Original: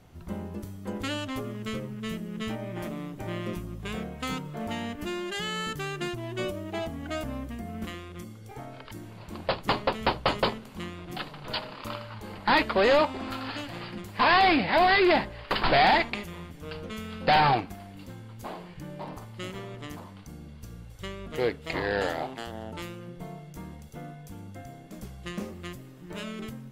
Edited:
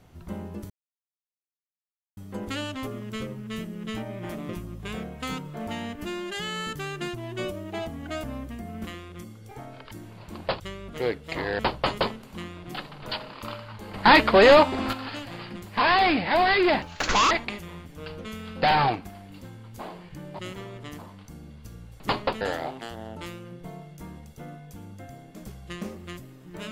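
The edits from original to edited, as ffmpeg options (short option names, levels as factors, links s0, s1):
-filter_complex "[0:a]asplit=12[s0][s1][s2][s3][s4][s5][s6][s7][s8][s9][s10][s11];[s0]atrim=end=0.7,asetpts=PTS-STARTPTS,afade=t=out:st=0.696:d=0.004:c=hsin,apad=pad_dur=1.47[s12];[s1]atrim=start=0.7:end=3.022,asetpts=PTS-STARTPTS,afade=t=in:d=0.004:c=hsin[s13];[s2]atrim=start=3.488:end=9.602[s14];[s3]atrim=start=20.978:end=21.972[s15];[s4]atrim=start=10.008:end=12.362[s16];[s5]atrim=start=12.358:end=13.352,asetpts=PTS-STARTPTS,volume=2.24[s17];[s6]atrim=start=13.348:end=15.244[s18];[s7]atrim=start=15.24:end=15.96,asetpts=PTS-STARTPTS,asetrate=64827,aresample=44100[s19];[s8]atrim=start=15.956:end=19.042[s20];[s9]atrim=start=19.368:end=20.982[s21];[s10]atrim=start=9.598:end=10.012[s22];[s11]atrim=start=21.968[s23];[s12][s13]concat=n=2:v=0:a=1[s24];[s24][s14]acrossfade=d=0.004:c1=hsin:c2=hsin[s25];[s25][s15]acrossfade=d=0.004:c1=hsin:c2=hsin[s26];[s26][s16]acrossfade=d=0.004:c1=hsin:c2=hsin[s27];[s27][s17]acrossfade=d=0.004:c1=hsin:c2=hsin[s28];[s28][s18]acrossfade=d=0.004:c1=hsin:c2=hsin[s29];[s29][s19]acrossfade=d=0.004:c1=hsin:c2=hsin[s30];[s30][s20]acrossfade=d=0.004:c1=hsin:c2=hsin[s31];[s31][s21]acrossfade=d=0.004:c1=hsin:c2=hsin[s32];[s32][s22]acrossfade=d=0.004:c1=hsin:c2=hsin[s33];[s33][s23]acrossfade=d=0.004:c1=hsin:c2=hsin"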